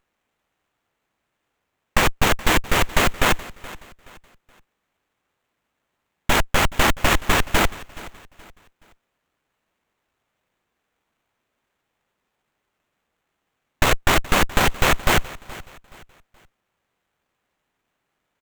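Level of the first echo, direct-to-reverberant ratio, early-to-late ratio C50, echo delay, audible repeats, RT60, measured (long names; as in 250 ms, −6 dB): −19.0 dB, no reverb audible, no reverb audible, 424 ms, 2, no reverb audible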